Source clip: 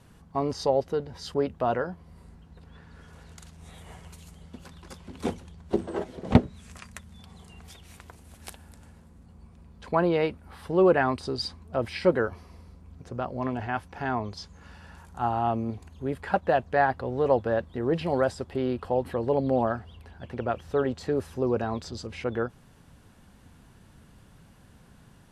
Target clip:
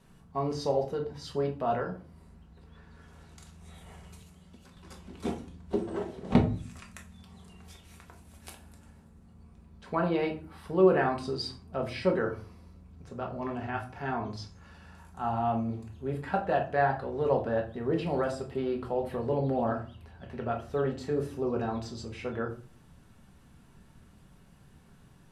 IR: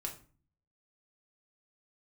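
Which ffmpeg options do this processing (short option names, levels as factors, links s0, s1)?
-filter_complex "[1:a]atrim=start_sample=2205[s0];[0:a][s0]afir=irnorm=-1:irlink=0,asettb=1/sr,asplit=3[s1][s2][s3];[s1]atrim=end=4.224[s4];[s2]atrim=start=4.22:end=4.77,asetpts=PTS-STARTPTS,afade=t=in:d=0.004:c=qsin,afade=t=out:st=0.546:d=0.004:c=qsin,acrossover=split=85|2400[s5][s6][s7];[s5]acompressor=threshold=0.00112:ratio=4[s8];[s6]acompressor=threshold=0.00355:ratio=4[s9];[s7]acompressor=threshold=0.00112:ratio=4[s10];[s8][s9][s10]amix=inputs=3:normalize=0[s11];[s3]atrim=start=4.766[s12];[s4][s11]acrossfade=d=0.004:c1=hsin:c2=qsin[s13];[s13][s12]acrossfade=d=0.004:c1=qsin:c2=hsin,volume=0.708"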